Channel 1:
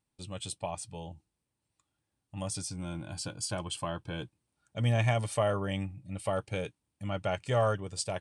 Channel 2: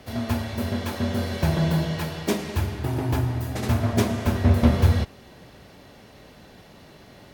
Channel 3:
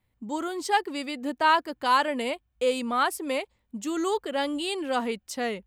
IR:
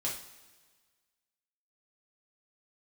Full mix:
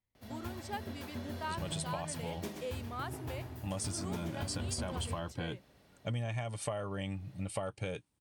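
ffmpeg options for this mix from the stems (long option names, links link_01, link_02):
-filter_complex "[0:a]adelay=1300,volume=2.5dB[link_01];[1:a]highshelf=frequency=11000:gain=5,adelay=150,volume=-17dB,asplit=2[link_02][link_03];[link_03]volume=-7.5dB[link_04];[2:a]volume=-16dB[link_05];[link_04]aecho=0:1:128:1[link_06];[link_01][link_02][link_05][link_06]amix=inputs=4:normalize=0,acompressor=threshold=-33dB:ratio=12"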